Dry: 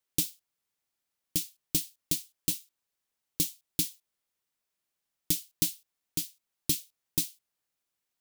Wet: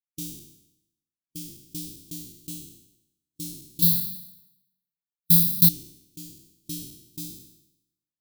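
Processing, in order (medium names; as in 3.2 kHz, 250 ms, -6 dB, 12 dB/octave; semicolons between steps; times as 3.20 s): spectral sustain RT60 1.25 s; 3.82–5.69 s: FFT filter 100 Hz 0 dB, 180 Hz +14 dB, 320 Hz -6 dB, 720 Hz +6 dB, 1.7 kHz -23 dB, 4 kHz +13 dB, 6.7 kHz 0 dB, 13 kHz +15 dB; spectral contrast expander 1.5:1; trim -4 dB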